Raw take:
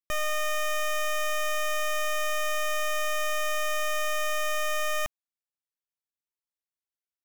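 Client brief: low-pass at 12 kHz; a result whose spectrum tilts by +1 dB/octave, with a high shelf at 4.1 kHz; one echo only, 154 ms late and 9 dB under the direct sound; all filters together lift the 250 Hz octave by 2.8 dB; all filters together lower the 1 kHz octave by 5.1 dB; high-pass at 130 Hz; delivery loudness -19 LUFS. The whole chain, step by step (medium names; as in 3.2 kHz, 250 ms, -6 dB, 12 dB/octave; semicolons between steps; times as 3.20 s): high-pass 130 Hz; low-pass 12 kHz; peaking EQ 250 Hz +5.5 dB; peaking EQ 1 kHz -8 dB; treble shelf 4.1 kHz +8 dB; delay 154 ms -9 dB; trim +8.5 dB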